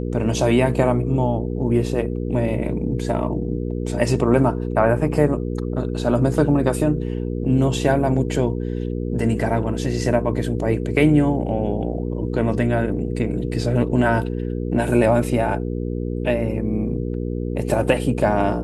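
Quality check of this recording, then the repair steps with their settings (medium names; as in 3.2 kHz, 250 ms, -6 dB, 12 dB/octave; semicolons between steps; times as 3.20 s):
hum 60 Hz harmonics 8 -25 dBFS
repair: de-hum 60 Hz, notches 8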